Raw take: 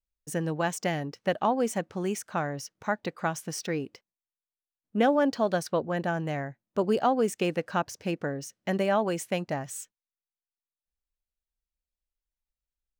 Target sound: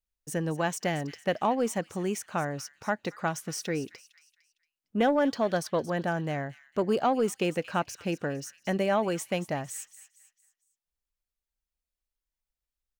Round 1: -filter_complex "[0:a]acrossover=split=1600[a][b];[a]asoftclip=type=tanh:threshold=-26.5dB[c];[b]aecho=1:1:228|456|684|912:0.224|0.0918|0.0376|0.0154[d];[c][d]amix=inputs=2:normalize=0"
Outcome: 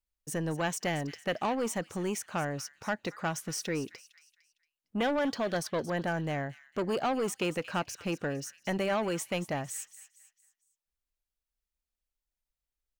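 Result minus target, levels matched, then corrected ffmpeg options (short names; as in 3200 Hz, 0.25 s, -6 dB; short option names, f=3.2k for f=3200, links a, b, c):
soft clip: distortion +14 dB
-filter_complex "[0:a]acrossover=split=1600[a][b];[a]asoftclip=type=tanh:threshold=-15.5dB[c];[b]aecho=1:1:228|456|684|912:0.224|0.0918|0.0376|0.0154[d];[c][d]amix=inputs=2:normalize=0"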